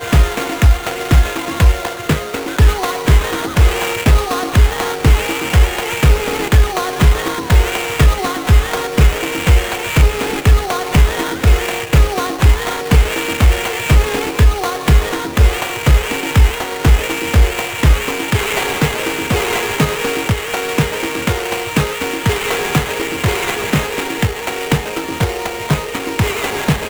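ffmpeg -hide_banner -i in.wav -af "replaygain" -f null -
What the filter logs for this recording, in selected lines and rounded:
track_gain = -1.2 dB
track_peak = 0.602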